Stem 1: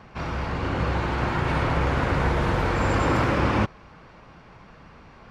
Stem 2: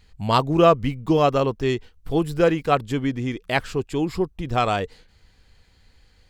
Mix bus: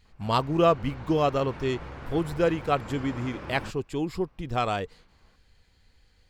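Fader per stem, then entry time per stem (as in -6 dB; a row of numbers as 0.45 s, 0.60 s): -17.5 dB, -5.5 dB; 0.05 s, 0.00 s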